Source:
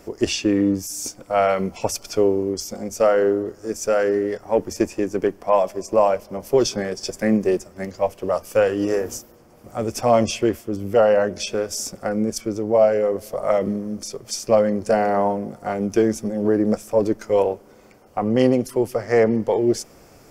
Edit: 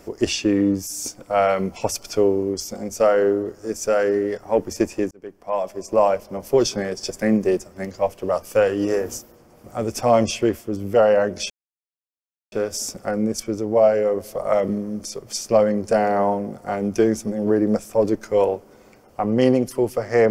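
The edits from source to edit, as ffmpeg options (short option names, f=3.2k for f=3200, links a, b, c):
-filter_complex "[0:a]asplit=3[a][b][c];[a]atrim=end=5.11,asetpts=PTS-STARTPTS,afade=t=out:st=5.106:d=0.004:c=hsin[d];[b]atrim=start=5.11:end=11.5,asetpts=PTS-STARTPTS,afade=t=in:d=0.92,afade=t=out:st=6.386:d=0.004:c=hsin,apad=pad_dur=1.02[e];[c]atrim=start=11.5,asetpts=PTS-STARTPTS,afade=t=in:d=0.004:c=hsin[f];[d][e][f]concat=n=3:v=0:a=1"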